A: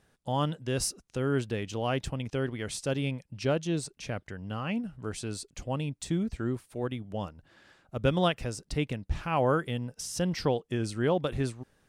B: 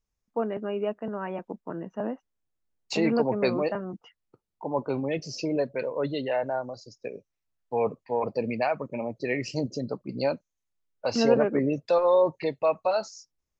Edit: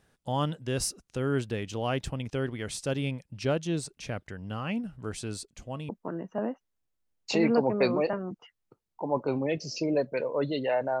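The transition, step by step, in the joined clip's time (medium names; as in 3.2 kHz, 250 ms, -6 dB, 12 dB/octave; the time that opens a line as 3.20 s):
A
5.45–5.89 s: feedback comb 220 Hz, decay 0.16 s, harmonics odd, mix 50%
5.89 s: go over to B from 1.51 s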